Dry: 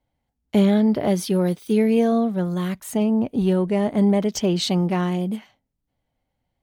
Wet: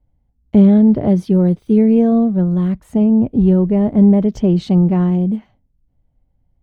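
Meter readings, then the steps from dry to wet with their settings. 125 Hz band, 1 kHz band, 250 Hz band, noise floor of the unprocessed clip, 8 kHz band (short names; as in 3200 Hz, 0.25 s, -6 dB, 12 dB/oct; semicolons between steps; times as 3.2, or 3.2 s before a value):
+9.0 dB, -0.5 dB, +8.0 dB, -78 dBFS, under -10 dB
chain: tilt -4.5 dB/oct; gain -2 dB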